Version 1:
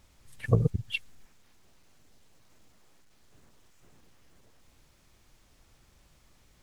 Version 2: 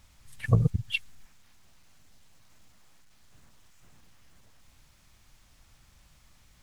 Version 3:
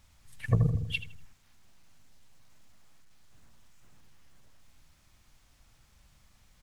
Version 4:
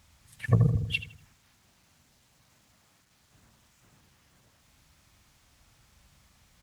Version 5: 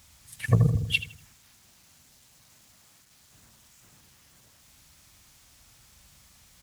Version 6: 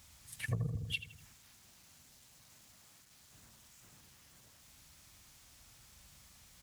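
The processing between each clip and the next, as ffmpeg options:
-af "equalizer=f=400:w=1.1:g=-9,volume=3dB"
-filter_complex "[0:a]asplit=2[a][b];[b]adelay=80,lowpass=f=1.3k:p=1,volume=-6.5dB,asplit=2[c][d];[d]adelay=80,lowpass=f=1.3k:p=1,volume=0.53,asplit=2[e][f];[f]adelay=80,lowpass=f=1.3k:p=1,volume=0.53,asplit=2[g][h];[h]adelay=80,lowpass=f=1.3k:p=1,volume=0.53,asplit=2[i][j];[j]adelay=80,lowpass=f=1.3k:p=1,volume=0.53,asplit=2[k][l];[l]adelay=80,lowpass=f=1.3k:p=1,volume=0.53,asplit=2[m][n];[n]adelay=80,lowpass=f=1.3k:p=1,volume=0.53[o];[a][c][e][g][i][k][m][o]amix=inputs=8:normalize=0,volume=-3.5dB"
-af "highpass=55,volume=3dB"
-af "highshelf=f=3.9k:g=10,volume=1.5dB"
-af "acompressor=threshold=-35dB:ratio=2.5,volume=-3.5dB"

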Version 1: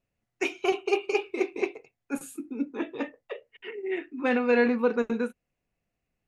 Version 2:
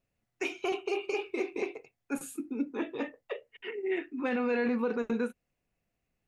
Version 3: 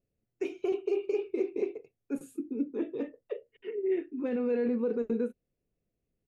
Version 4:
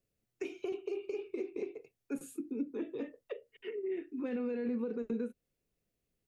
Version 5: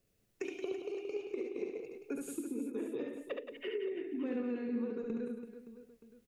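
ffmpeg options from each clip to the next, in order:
-af "alimiter=limit=-22dB:level=0:latency=1:release=54"
-af "firequalizer=gain_entry='entry(250,0);entry(420,4);entry(800,-12)':delay=0.05:min_phase=1"
-filter_complex "[0:a]acrossover=split=270[a][b];[b]acompressor=threshold=-37dB:ratio=6[c];[a][c]amix=inputs=2:normalize=0,tiltshelf=f=970:g=-4,volume=1dB"
-filter_complex "[0:a]acompressor=threshold=-44dB:ratio=5,asplit=2[a][b];[b]aecho=0:1:70|175|332.5|568.8|923.1:0.631|0.398|0.251|0.158|0.1[c];[a][c]amix=inputs=2:normalize=0,volume=6.5dB"

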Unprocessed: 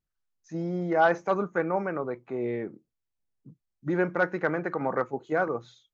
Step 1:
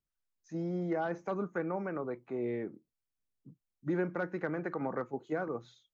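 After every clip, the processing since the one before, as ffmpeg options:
-filter_complex "[0:a]equalizer=f=270:w=1.5:g=2.5,acrossover=split=350[a][b];[b]acompressor=threshold=-29dB:ratio=4[c];[a][c]amix=inputs=2:normalize=0,volume=-5.5dB"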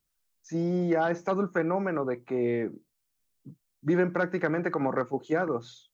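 -af "highshelf=f=3.6k:g=7,volume=7.5dB"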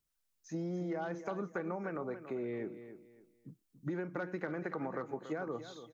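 -af "acompressor=threshold=-30dB:ratio=6,aecho=1:1:283|566|849:0.266|0.0745|0.0209,volume=-5dB"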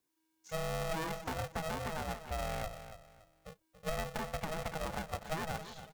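-filter_complex "[0:a]acrossover=split=740[a][b];[b]alimiter=level_in=12dB:limit=-24dB:level=0:latency=1:release=358,volume=-12dB[c];[a][c]amix=inputs=2:normalize=0,aeval=exprs='val(0)*sgn(sin(2*PI*320*n/s))':c=same,volume=1dB"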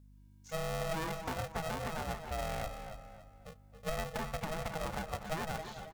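-filter_complex "[0:a]aeval=exprs='val(0)+0.00141*(sin(2*PI*50*n/s)+sin(2*PI*2*50*n/s)/2+sin(2*PI*3*50*n/s)/3+sin(2*PI*4*50*n/s)/4+sin(2*PI*5*50*n/s)/5)':c=same,asplit=2[a][b];[b]adelay=271,lowpass=f=2.5k:p=1,volume=-9.5dB,asplit=2[c][d];[d]adelay=271,lowpass=f=2.5k:p=1,volume=0.39,asplit=2[e][f];[f]adelay=271,lowpass=f=2.5k:p=1,volume=0.39,asplit=2[g][h];[h]adelay=271,lowpass=f=2.5k:p=1,volume=0.39[i];[c][e][g][i]amix=inputs=4:normalize=0[j];[a][j]amix=inputs=2:normalize=0"

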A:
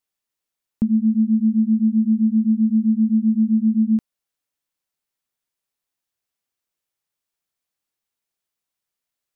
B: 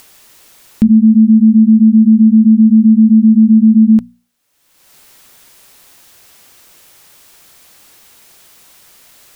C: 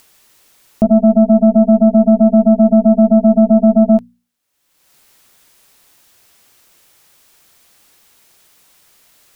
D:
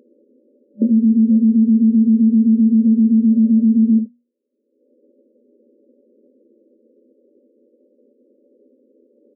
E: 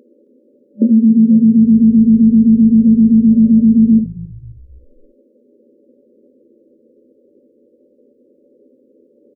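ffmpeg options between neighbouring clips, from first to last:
-af "bandreject=f=60:t=h:w=6,bandreject=f=120:t=h:w=6,bandreject=f=180:t=h:w=6,bandreject=f=240:t=h:w=6,acompressor=mode=upward:threshold=-37dB:ratio=2.5,alimiter=level_in=15dB:limit=-1dB:release=50:level=0:latency=1,volume=-1dB"
-af "aeval=exprs='0.841*(cos(1*acos(clip(val(0)/0.841,-1,1)))-cos(1*PI/2))+0.422*(cos(3*acos(clip(val(0)/0.841,-1,1)))-cos(3*PI/2))+0.0188*(cos(6*acos(clip(val(0)/0.841,-1,1)))-cos(6*PI/2))':c=same,volume=-1.5dB"
-af "acrusher=samples=23:mix=1:aa=0.000001:lfo=1:lforange=13.8:lforate=0.36,aecho=1:1:12|72:0.531|0.282,afftfilt=real='re*between(b*sr/4096,210,590)':imag='im*between(b*sr/4096,210,590)':win_size=4096:overlap=0.75"
-filter_complex "[0:a]asplit=5[a][b][c][d][e];[b]adelay=267,afreqshift=-53,volume=-20dB[f];[c]adelay=534,afreqshift=-106,volume=-25.5dB[g];[d]adelay=801,afreqshift=-159,volume=-31dB[h];[e]adelay=1068,afreqshift=-212,volume=-36.5dB[i];[a][f][g][h][i]amix=inputs=5:normalize=0,volume=4dB"

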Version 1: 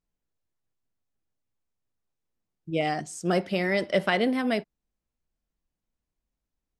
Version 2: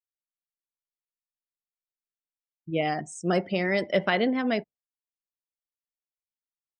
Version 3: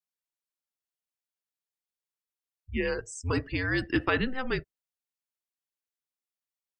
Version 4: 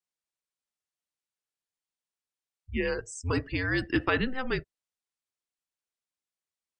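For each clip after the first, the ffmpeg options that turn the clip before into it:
-af "afftdn=nr=35:nf=-43"
-af "highpass=f=500:p=1,afreqshift=-260"
-af "aresample=22050,aresample=44100"

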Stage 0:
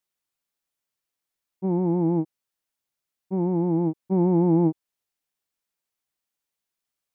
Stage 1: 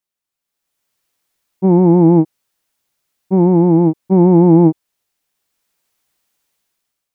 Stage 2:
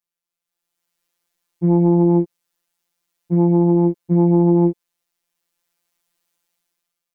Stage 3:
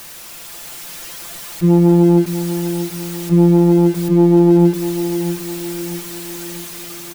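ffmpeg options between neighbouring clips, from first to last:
-af "dynaudnorm=f=210:g=7:m=16dB"
-af "acompressor=threshold=-10dB:ratio=4,afftfilt=real='hypot(re,im)*cos(PI*b)':imag='0':win_size=1024:overlap=0.75,volume=-1dB"
-af "aeval=exprs='val(0)+0.5*0.0376*sgn(val(0))':c=same,aecho=1:1:647|1294|1941|2588|3235:0.316|0.155|0.0759|0.0372|0.0182,volume=3dB"

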